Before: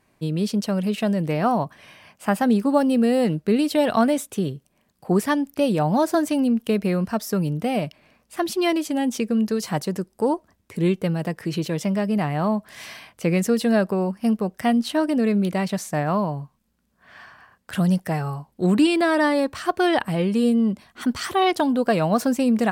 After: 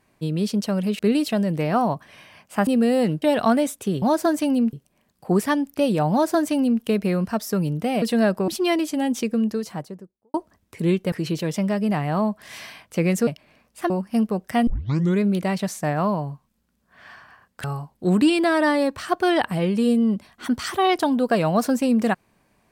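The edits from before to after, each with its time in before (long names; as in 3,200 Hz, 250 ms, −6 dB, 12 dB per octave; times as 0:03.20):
0:02.37–0:02.88: remove
0:03.43–0:03.73: move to 0:00.99
0:05.91–0:06.62: duplicate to 0:04.53
0:07.82–0:08.45: swap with 0:13.54–0:14.00
0:09.18–0:10.31: fade out and dull
0:11.09–0:11.39: remove
0:14.77: tape start 0.55 s
0:17.74–0:18.21: remove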